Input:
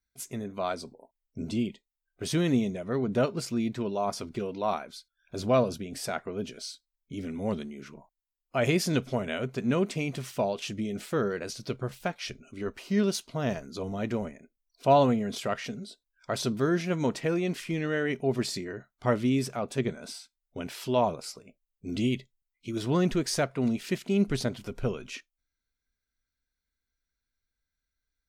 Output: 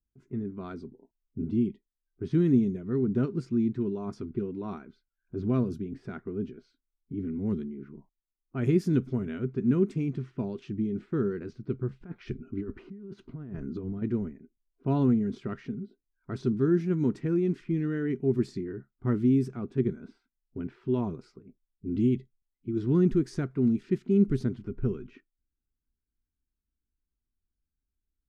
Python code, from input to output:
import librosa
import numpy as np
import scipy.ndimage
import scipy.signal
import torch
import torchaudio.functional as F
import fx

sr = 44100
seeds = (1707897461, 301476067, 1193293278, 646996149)

y = fx.over_compress(x, sr, threshold_db=-38.0, ratio=-1.0, at=(12.01, 14.02))
y = fx.env_lowpass(y, sr, base_hz=1100.0, full_db=-23.5)
y = fx.curve_eq(y, sr, hz=(390.0, 560.0, 1400.0, 2900.0), db=(0, -22, -11, -20))
y = y * librosa.db_to_amplitude(3.0)